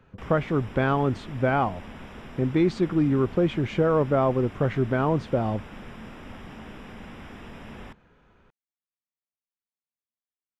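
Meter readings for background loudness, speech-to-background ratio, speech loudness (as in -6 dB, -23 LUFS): -43.0 LUFS, 18.5 dB, -24.5 LUFS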